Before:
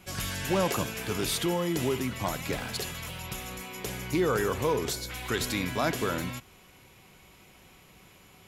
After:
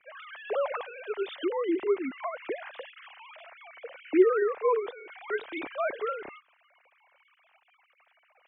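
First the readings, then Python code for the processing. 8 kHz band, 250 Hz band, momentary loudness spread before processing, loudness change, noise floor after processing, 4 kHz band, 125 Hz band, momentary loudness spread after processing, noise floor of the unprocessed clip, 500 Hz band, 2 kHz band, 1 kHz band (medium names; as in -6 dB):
under -40 dB, -1.5 dB, 10 LU, +0.5 dB, -69 dBFS, -13.5 dB, under -35 dB, 22 LU, -56 dBFS, +3.0 dB, -4.0 dB, -1.5 dB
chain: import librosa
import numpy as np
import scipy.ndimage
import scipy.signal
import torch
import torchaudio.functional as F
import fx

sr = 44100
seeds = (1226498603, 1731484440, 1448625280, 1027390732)

y = fx.sine_speech(x, sr)
y = scipy.signal.sosfilt(scipy.signal.bessel(2, 2600.0, 'lowpass', norm='mag', fs=sr, output='sos'), y)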